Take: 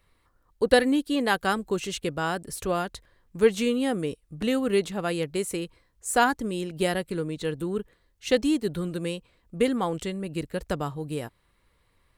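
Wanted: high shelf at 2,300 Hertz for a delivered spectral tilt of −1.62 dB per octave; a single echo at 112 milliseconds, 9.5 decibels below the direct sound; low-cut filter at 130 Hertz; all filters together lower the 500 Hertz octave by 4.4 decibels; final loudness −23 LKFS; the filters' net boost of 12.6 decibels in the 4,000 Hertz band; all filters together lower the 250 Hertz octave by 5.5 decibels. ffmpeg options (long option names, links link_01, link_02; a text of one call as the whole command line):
ffmpeg -i in.wav -af "highpass=130,equalizer=frequency=250:width_type=o:gain=-5.5,equalizer=frequency=500:width_type=o:gain=-4,highshelf=frequency=2300:gain=8.5,equalizer=frequency=4000:width_type=o:gain=8.5,aecho=1:1:112:0.335,volume=1.5dB" out.wav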